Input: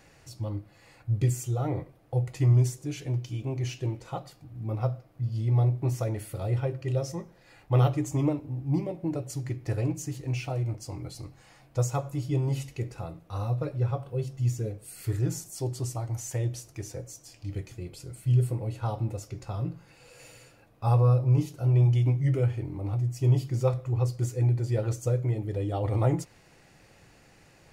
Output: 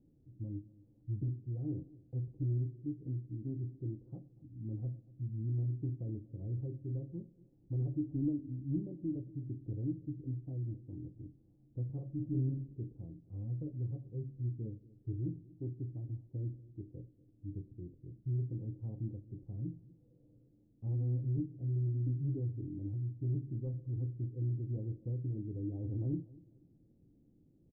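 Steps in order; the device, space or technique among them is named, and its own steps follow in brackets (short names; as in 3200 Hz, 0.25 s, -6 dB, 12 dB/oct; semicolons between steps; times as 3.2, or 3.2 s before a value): overdriven synthesiser ladder filter (soft clip -22 dBFS, distortion -12 dB; ladder low-pass 330 Hz, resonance 50%); 11.85–12.72 doubler 46 ms -4 dB; feedback echo 0.24 s, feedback 35%, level -21 dB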